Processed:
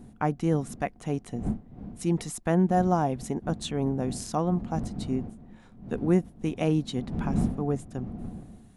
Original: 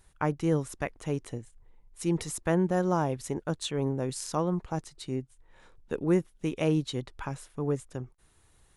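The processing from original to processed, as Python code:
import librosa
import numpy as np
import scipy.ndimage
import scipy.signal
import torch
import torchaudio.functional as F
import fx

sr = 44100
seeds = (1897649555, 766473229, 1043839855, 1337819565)

y = fx.dmg_wind(x, sr, seeds[0], corner_hz=180.0, level_db=-39.0)
y = fx.small_body(y, sr, hz=(220.0, 720.0), ring_ms=50, db=11)
y = y * librosa.db_to_amplitude(-1.0)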